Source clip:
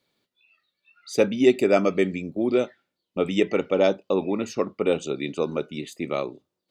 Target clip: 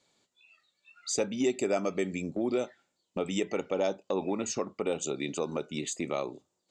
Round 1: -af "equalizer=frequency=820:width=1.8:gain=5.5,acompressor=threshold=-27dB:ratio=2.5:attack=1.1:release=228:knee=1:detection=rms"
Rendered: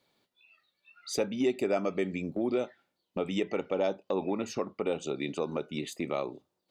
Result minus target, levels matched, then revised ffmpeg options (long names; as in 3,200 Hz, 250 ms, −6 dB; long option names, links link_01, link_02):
8,000 Hz band −8.5 dB
-af "lowpass=frequency=7300:width_type=q:width=6,equalizer=frequency=820:width=1.8:gain=5.5,acompressor=threshold=-27dB:ratio=2.5:attack=1.1:release=228:knee=1:detection=rms"